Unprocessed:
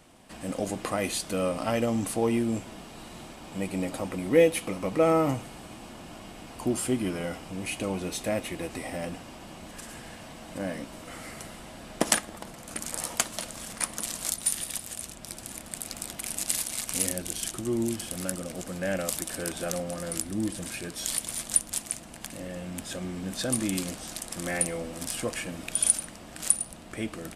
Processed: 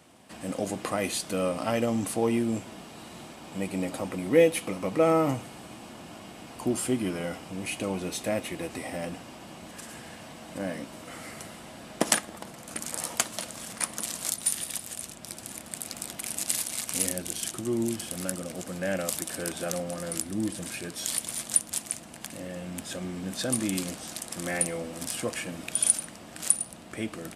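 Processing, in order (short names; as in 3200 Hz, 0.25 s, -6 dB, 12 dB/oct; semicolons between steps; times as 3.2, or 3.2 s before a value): HPF 87 Hz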